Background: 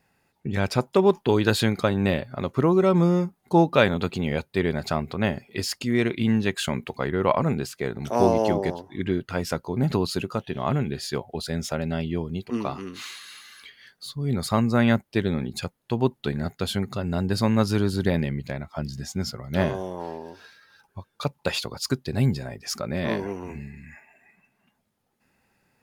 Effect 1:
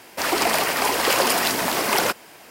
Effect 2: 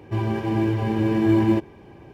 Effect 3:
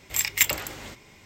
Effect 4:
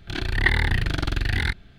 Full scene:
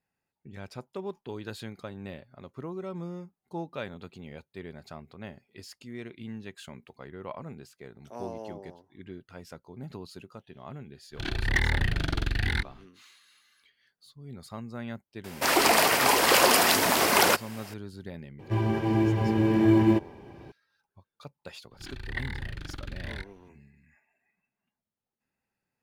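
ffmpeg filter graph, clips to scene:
-filter_complex "[4:a]asplit=2[s0][s1];[0:a]volume=0.126[s2];[s0]asoftclip=type=hard:threshold=0.224[s3];[s1]bandreject=f=670:w=6.2[s4];[s3]atrim=end=1.78,asetpts=PTS-STARTPTS,volume=0.631,afade=t=in:d=0.05,afade=t=out:st=1.73:d=0.05,adelay=11100[s5];[1:a]atrim=end=2.5,asetpts=PTS-STARTPTS,volume=0.944,afade=t=in:d=0.004:c=hsin,afade=t=out:st=2.496:d=0.004:c=hsin,adelay=672084S[s6];[2:a]atrim=end=2.13,asetpts=PTS-STARTPTS,volume=0.794,afade=t=in:d=0.004:c=hsin,afade=t=out:st=2.126:d=0.004:c=hsin,adelay=18390[s7];[s4]atrim=end=1.78,asetpts=PTS-STARTPTS,volume=0.188,afade=t=in:d=0.004:c=hsin,afade=t=out:st=1.776:d=0.004:c=hsin,adelay=21710[s8];[s2][s5][s6][s7][s8]amix=inputs=5:normalize=0"

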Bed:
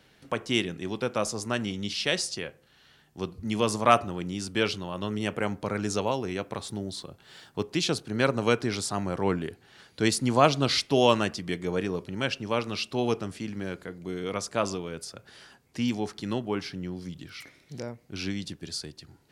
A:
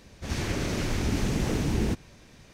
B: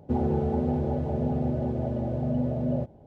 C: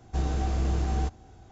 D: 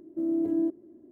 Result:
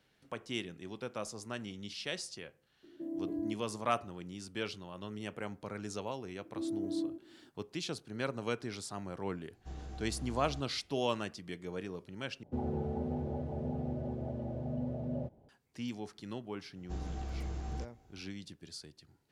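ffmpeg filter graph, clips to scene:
-filter_complex "[4:a]asplit=2[s0][s1];[3:a]asplit=2[s2][s3];[0:a]volume=0.251[s4];[s0]asplit=2[s5][s6];[s6]adelay=14,volume=0.708[s7];[s5][s7]amix=inputs=2:normalize=0[s8];[s1]aecho=1:1:89:0.355[s9];[s4]asplit=2[s10][s11];[s10]atrim=end=12.434[s12];[2:a]atrim=end=3.06,asetpts=PTS-STARTPTS,volume=0.316[s13];[s11]atrim=start=15.486[s14];[s8]atrim=end=1.11,asetpts=PTS-STARTPTS,volume=0.355,afade=t=in:d=0.004:c=hsin,afade=t=out:st=1.106:d=0.004:c=hsin,adelay=2830[s15];[s9]atrim=end=1.11,asetpts=PTS-STARTPTS,volume=0.376,afade=t=in:d=0.004:c=hsin,afade=t=out:st=1.106:d=0.004:c=hsin,adelay=6390[s16];[s2]atrim=end=1.51,asetpts=PTS-STARTPTS,volume=0.133,afade=t=in:d=0.004:c=hsin,afade=t=out:st=1.506:d=0.004:c=hsin,adelay=9520[s17];[s3]atrim=end=1.51,asetpts=PTS-STARTPTS,volume=0.237,afade=t=in:d=0.004:c=hsin,afade=t=out:st=1.506:d=0.004:c=hsin,adelay=16760[s18];[s12][s13]acrossfade=d=0.004:c1=hsin:c2=hsin[s19];[s19][s14]acrossfade=d=0.004:c1=hsin:c2=hsin[s20];[s20][s15][s16][s17][s18]amix=inputs=5:normalize=0"

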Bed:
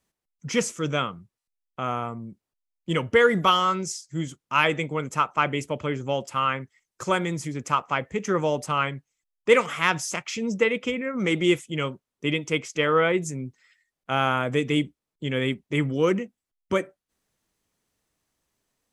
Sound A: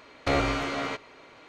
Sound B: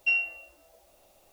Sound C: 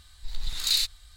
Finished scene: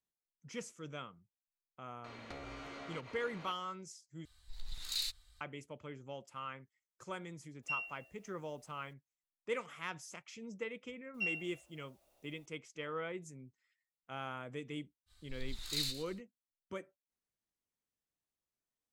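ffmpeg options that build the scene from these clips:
-filter_complex "[3:a]asplit=2[s0][s1];[2:a]asplit=2[s2][s3];[0:a]volume=0.1[s4];[1:a]acompressor=threshold=0.00562:ratio=6:attack=3.2:release=140:knee=1:detection=peak[s5];[s1]aecho=1:1:114|228|342:0.251|0.0628|0.0157[s6];[s4]asplit=2[s7][s8];[s7]atrim=end=4.254[s9];[s0]atrim=end=1.16,asetpts=PTS-STARTPTS,volume=0.224[s10];[s8]atrim=start=5.406[s11];[s5]atrim=end=1.48,asetpts=PTS-STARTPTS,volume=0.891,afade=t=in:d=0.004:c=hsin,afade=t=out:st=1.476:d=0.004:c=hsin,adelay=2040[s12];[s2]atrim=end=1.32,asetpts=PTS-STARTPTS,volume=0.2,afade=t=in:d=0.02,afade=t=out:st=1.3:d=0.02,adelay=336042S[s13];[s3]atrim=end=1.32,asetpts=PTS-STARTPTS,volume=0.251,afade=t=in:d=0.004:c=hsin,afade=t=out:st=1.316:d=0.004:c=hsin,adelay=491274S[s14];[s6]atrim=end=1.16,asetpts=PTS-STARTPTS,volume=0.224,afade=t=in:d=0.05,afade=t=out:st=1.11:d=0.05,adelay=15060[s15];[s9][s10]acrossfade=d=0.004:c1=hsin:c2=hsin[s16];[s16][s11]acrossfade=d=0.004:c1=hsin:c2=hsin[s17];[s17][s12][s13][s14][s15]amix=inputs=5:normalize=0"

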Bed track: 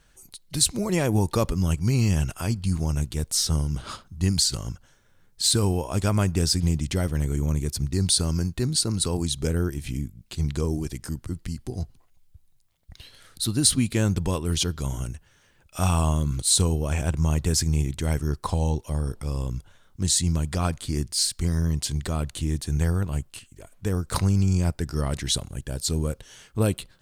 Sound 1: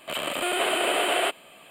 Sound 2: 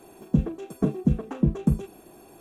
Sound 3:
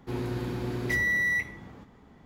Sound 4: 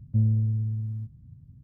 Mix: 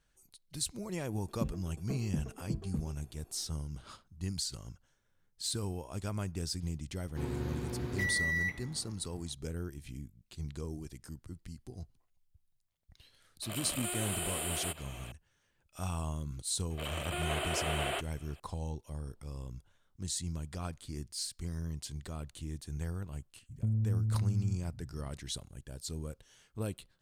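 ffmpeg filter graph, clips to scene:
-filter_complex "[1:a]asplit=2[s0][s1];[0:a]volume=0.188[s2];[s0]acrossover=split=190|5700[s3][s4][s5];[s4]acompressor=threshold=0.00794:ratio=4:attack=1.4:release=76:knee=2.83:detection=peak[s6];[s3][s6][s5]amix=inputs=3:normalize=0[s7];[s1]acontrast=58[s8];[4:a]acompressor=threshold=0.0447:ratio=6:attack=3.2:release=140:knee=1:detection=peak[s9];[2:a]atrim=end=2.4,asetpts=PTS-STARTPTS,volume=0.178,afade=t=in:d=0.004:c=hsin,afade=t=out:st=2.396:d=0.004:c=hsin,adelay=1070[s10];[3:a]atrim=end=2.25,asetpts=PTS-STARTPTS,volume=0.473,afade=t=in:d=0.004:c=hsin,afade=t=out:st=2.246:d=0.004:c=hsin,adelay=7090[s11];[s7]atrim=end=1.7,asetpts=PTS-STARTPTS,volume=0.944,afade=t=in:d=0.004:c=hsin,afade=t=out:st=1.696:d=0.004:c=hsin,adelay=13420[s12];[s8]atrim=end=1.7,asetpts=PTS-STARTPTS,volume=0.141,afade=t=in:d=0.004:c=hsin,afade=t=out:st=1.696:d=0.004:c=hsin,adelay=16700[s13];[s9]atrim=end=1.63,asetpts=PTS-STARTPTS,volume=0.891,afade=t=in:d=0.004:c=hsin,afade=t=out:st=1.626:d=0.004:c=hsin,adelay=23490[s14];[s2][s10][s11][s12][s13][s14]amix=inputs=6:normalize=0"

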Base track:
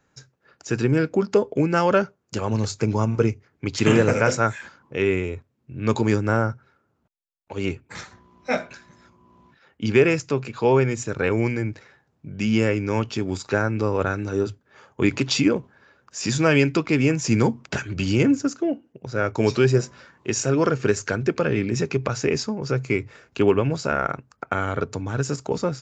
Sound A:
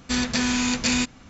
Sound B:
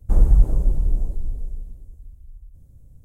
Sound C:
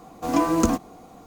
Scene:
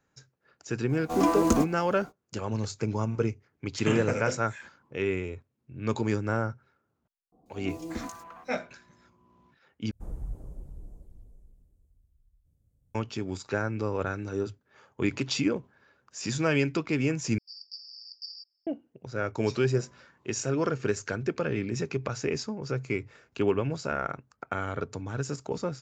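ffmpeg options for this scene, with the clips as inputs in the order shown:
-filter_complex "[3:a]asplit=2[s0][s1];[0:a]volume=0.422[s2];[s1]acrossover=split=770|2700[s3][s4][s5];[s5]adelay=140[s6];[s4]adelay=350[s7];[s3][s7][s6]amix=inputs=3:normalize=0[s8];[2:a]highpass=f=71:p=1[s9];[1:a]asuperpass=centerf=5000:order=12:qfactor=5.7[s10];[s2]asplit=3[s11][s12][s13];[s11]atrim=end=9.914[s14];[s9]atrim=end=3.04,asetpts=PTS-STARTPTS,volume=0.141[s15];[s12]atrim=start=12.946:end=17.384[s16];[s10]atrim=end=1.29,asetpts=PTS-STARTPTS,volume=0.376[s17];[s13]atrim=start=18.666[s18];[s0]atrim=end=1.26,asetpts=PTS-STARTPTS,volume=0.708,afade=t=in:d=0.05,afade=t=out:st=1.21:d=0.05,adelay=870[s19];[s8]atrim=end=1.26,asetpts=PTS-STARTPTS,volume=0.168,afade=t=in:d=0.004:c=hsin,afade=t=out:st=1.256:d=0.004:c=hsin,adelay=7320[s20];[s14][s15]acrossfade=d=0.004:c1=hsin:c2=hsin[s21];[s21][s16]acrossfade=d=0.004:c1=hsin:c2=hsin[s22];[s22][s17]acrossfade=d=0.004:c1=hsin:c2=hsin[s23];[s23][s18]acrossfade=d=0.004:c1=hsin:c2=hsin[s24];[s24][s19][s20]amix=inputs=3:normalize=0"

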